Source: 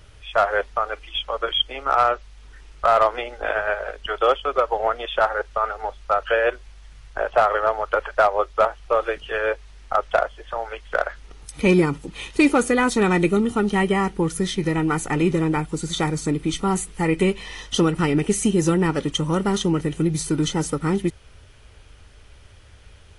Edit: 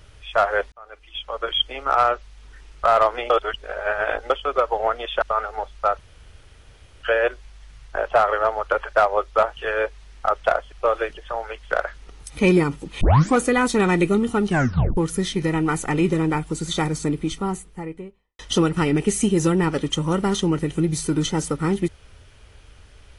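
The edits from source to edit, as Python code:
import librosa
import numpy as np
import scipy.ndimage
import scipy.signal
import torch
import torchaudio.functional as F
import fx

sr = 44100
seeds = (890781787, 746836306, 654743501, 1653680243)

y = fx.studio_fade_out(x, sr, start_s=16.13, length_s=1.48)
y = fx.edit(y, sr, fx.fade_in_span(start_s=0.72, length_s=0.88),
    fx.reverse_span(start_s=3.3, length_s=1.0),
    fx.cut(start_s=5.22, length_s=0.26),
    fx.insert_room_tone(at_s=6.25, length_s=1.04),
    fx.move(start_s=8.79, length_s=0.45, to_s=10.39),
    fx.tape_start(start_s=12.23, length_s=0.36),
    fx.tape_stop(start_s=13.7, length_s=0.49), tone=tone)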